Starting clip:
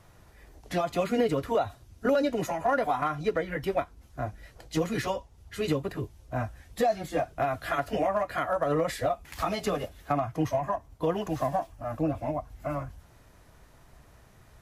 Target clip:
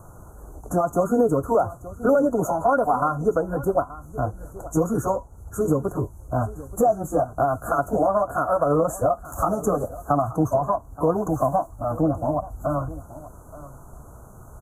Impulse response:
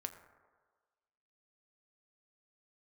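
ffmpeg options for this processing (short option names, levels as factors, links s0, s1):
-filter_complex "[0:a]asplit=2[s0][s1];[s1]acompressor=threshold=0.0126:ratio=6,volume=1.26[s2];[s0][s2]amix=inputs=2:normalize=0,asuperstop=centerf=3100:order=20:qfactor=0.63,aecho=1:1:878:0.133,volume=1.68"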